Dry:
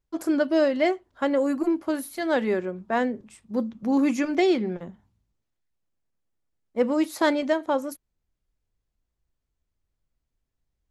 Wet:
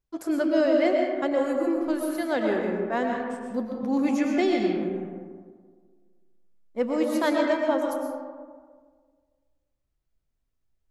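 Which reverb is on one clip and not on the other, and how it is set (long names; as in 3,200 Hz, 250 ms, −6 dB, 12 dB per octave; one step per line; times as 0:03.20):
comb and all-pass reverb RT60 1.7 s, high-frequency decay 0.4×, pre-delay 80 ms, DRR 0.5 dB
level −3.5 dB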